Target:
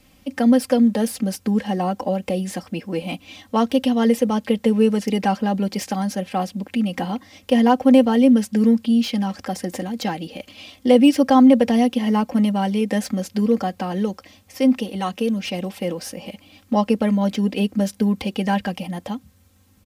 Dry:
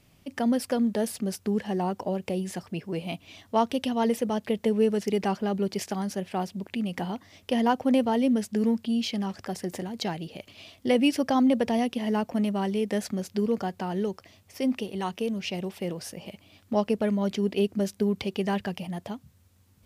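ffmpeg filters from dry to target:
ffmpeg -i in.wav -filter_complex "[0:a]aecho=1:1:3.8:0.69,acrossover=split=480|1500[link_01][link_02][link_03];[link_03]asoftclip=type=tanh:threshold=-29.5dB[link_04];[link_01][link_02][link_04]amix=inputs=3:normalize=0,volume=5.5dB" out.wav

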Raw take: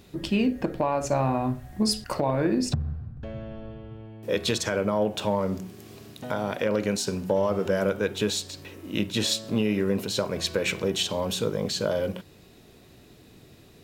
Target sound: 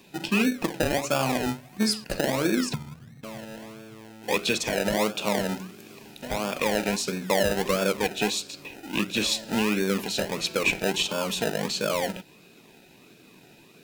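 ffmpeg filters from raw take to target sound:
ffmpeg -i in.wav -filter_complex "[0:a]highpass=frequency=150:width=0.5412,highpass=frequency=150:width=1.3066,equalizer=frequency=2500:width_type=o:width=0.22:gain=11,acrossover=split=1800[link_01][link_02];[link_01]acrusher=samples=31:mix=1:aa=0.000001:lfo=1:lforange=18.6:lforate=1.5[link_03];[link_03][link_02]amix=inputs=2:normalize=0" out.wav

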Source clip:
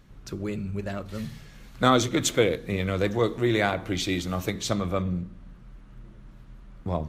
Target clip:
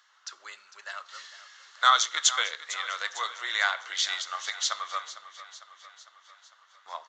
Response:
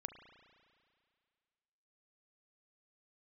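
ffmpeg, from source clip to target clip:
-filter_complex "[0:a]highpass=frequency=1100:width=0.5412,highpass=frequency=1100:width=1.3066,equalizer=frequency=2400:width=7.3:gain=-14.5,aeval=exprs='0.266*(cos(1*acos(clip(val(0)/0.266,-1,1)))-cos(1*PI/2))+0.00422*(cos(7*acos(clip(val(0)/0.266,-1,1)))-cos(7*PI/2))':channel_layout=same,asplit=2[link_01][link_02];[link_02]aecho=0:1:452|904|1356|1808|2260|2712:0.178|0.103|0.0598|0.0347|0.0201|0.0117[link_03];[link_01][link_03]amix=inputs=2:normalize=0,aresample=16000,aresample=44100,volume=5.5dB"

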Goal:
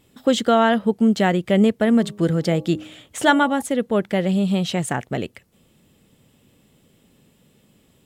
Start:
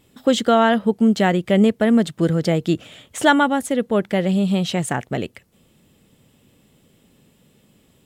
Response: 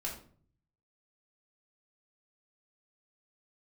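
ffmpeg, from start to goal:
-filter_complex "[0:a]asettb=1/sr,asplit=3[link_01][link_02][link_03];[link_01]atrim=end=1.854[link_04];[link_02]atrim=start=1.85:end=3.62,asetpts=PTS-STARTPTS,afade=type=in:duration=0.004:curve=qsin,afade=type=out:start_time=1.766:duration=0.004:curve=qsin,bandreject=frequency=103.2:width_type=h:width=4,bandreject=frequency=206.4:width_type=h:width=4,bandreject=frequency=309.6:width_type=h:width=4,bandreject=frequency=412.8:width_type=h:width=4,bandreject=frequency=516:width_type=h:width=4,bandreject=frequency=619.2:width_type=h:width=4,bandreject=frequency=722.4:width_type=h:width=4,bandreject=frequency=825.6:width_type=h:width=4,bandreject=frequency=928.8:width_type=h:width=4,bandreject=frequency=1032:width_type=h:width=4,bandreject=frequency=1135.2:width_type=h:width=4[link_05];[link_03]atrim=start=3.616[link_06];[link_04][link_05]acrossfade=duration=0.004:curve1=hsin:curve2=qsin[link_07];[link_07][link_06]acrossfade=duration=0.004:curve1=qsin:curve2=hsin,volume=-1dB"

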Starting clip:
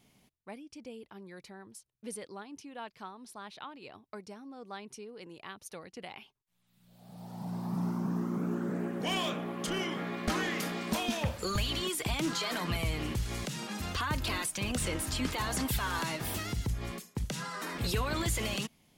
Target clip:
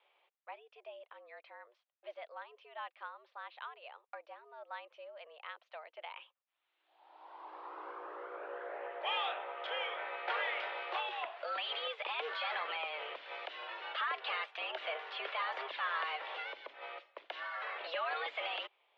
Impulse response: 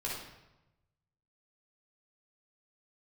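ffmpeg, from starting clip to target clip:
-filter_complex "[0:a]asettb=1/sr,asplit=3[link_01][link_02][link_03];[link_01]atrim=end=10.994[link_04];[link_02]atrim=start=10.99:end=11.48,asetpts=PTS-STARTPTS,afade=type=in:duration=0.004:curve=qsin,afade=type=out:start_time=0.486:duration=0.004:curve=qsin,acompressor=threshold=-31dB:ratio=6[link_05];[link_03]atrim=start=11.476[link_06];[link_04][link_05]acrossfade=duration=0.004:curve1=hsin:curve2=qsin[link_07];[link_07][link_06]acrossfade=duration=0.004:curve1=qsin:curve2=hsin,highpass=frequency=420:width_type=q:width=0.5412,highpass=frequency=420:width_type=q:width=1.307,lowpass=frequency=3200:width_type=q:width=0.5176,lowpass=frequency=3200:width_type=q:width=0.7071,lowpass=frequency=3200:width_type=q:width=1.932,afreqshift=140,volume=-1dB"

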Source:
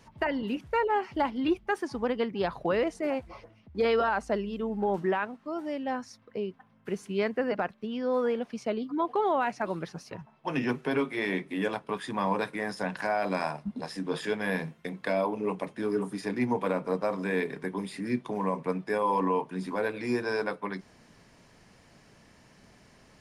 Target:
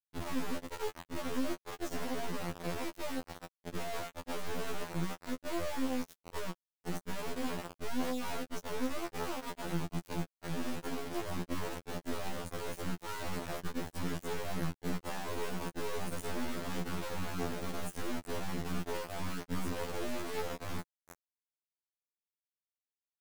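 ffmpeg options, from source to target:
ffmpeg -i in.wav -filter_complex "[0:a]acrossover=split=190[link_01][link_02];[link_02]acompressor=threshold=-33dB:ratio=8[link_03];[link_01][link_03]amix=inputs=2:normalize=0,alimiter=level_in=8.5dB:limit=-24dB:level=0:latency=1:release=22,volume=-8.5dB,acompressor=threshold=-42dB:ratio=3,equalizer=frequency=170:width_type=o:width=1.9:gain=6,asplit=2[link_04][link_05];[link_05]adelay=1140,lowpass=frequency=5000:poles=1,volume=-15.5dB,asplit=2[link_06][link_07];[link_07]adelay=1140,lowpass=frequency=5000:poles=1,volume=0.29,asplit=2[link_08][link_09];[link_09]adelay=1140,lowpass=frequency=5000:poles=1,volume=0.29[link_10];[link_06][link_08][link_10]amix=inputs=3:normalize=0[link_11];[link_04][link_11]amix=inputs=2:normalize=0,afftfilt=real='re*(1-between(b*sr/4096,750,5700))':imag='im*(1-between(b*sr/4096,750,5700))':win_size=4096:overlap=0.75,acrusher=bits=4:dc=4:mix=0:aa=0.000001,afftfilt=real='re*2*eq(mod(b,4),0)':imag='im*2*eq(mod(b,4),0)':win_size=2048:overlap=0.75,volume=8dB" out.wav

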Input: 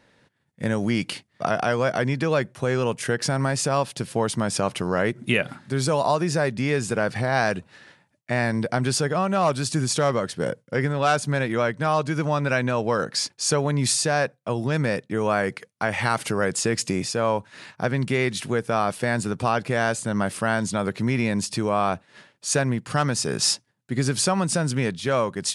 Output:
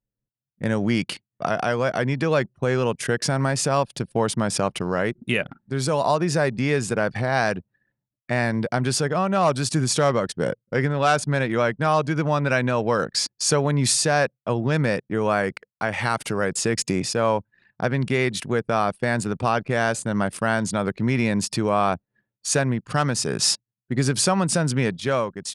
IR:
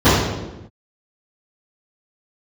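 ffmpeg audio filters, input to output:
-af "anlmdn=6.31,dynaudnorm=framelen=160:gausssize=7:maxgain=11.5dB,volume=-6.5dB"

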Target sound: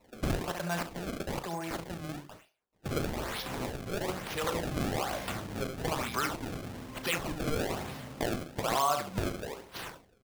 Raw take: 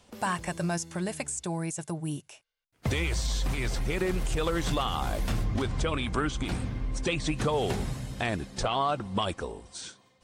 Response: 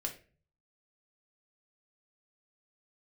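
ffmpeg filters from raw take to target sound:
-filter_complex "[0:a]highpass=frequency=73:width=0.5412,highpass=frequency=73:width=1.3066,equalizer=frequency=92:width=0.49:gain=-11.5,acrossover=split=210|510|2700[link_01][link_02][link_03][link_04];[link_02]acompressor=threshold=-46dB:ratio=6[link_05];[link_01][link_05][link_03][link_04]amix=inputs=4:normalize=0,asplit=2[link_06][link_07];[link_07]adelay=70,lowpass=frequency=3300:poles=1,volume=-6dB,asplit=2[link_08][link_09];[link_09]adelay=70,lowpass=frequency=3300:poles=1,volume=0.3,asplit=2[link_10][link_11];[link_11]adelay=70,lowpass=frequency=3300:poles=1,volume=0.3,asplit=2[link_12][link_13];[link_13]adelay=70,lowpass=frequency=3300:poles=1,volume=0.3[link_14];[link_06][link_08][link_10][link_12][link_14]amix=inputs=5:normalize=0,acrusher=samples=27:mix=1:aa=0.000001:lfo=1:lforange=43.2:lforate=1.1,asplit=2[link_15][link_16];[link_16]adelay=36,volume=-13dB[link_17];[link_15][link_17]amix=inputs=2:normalize=0"

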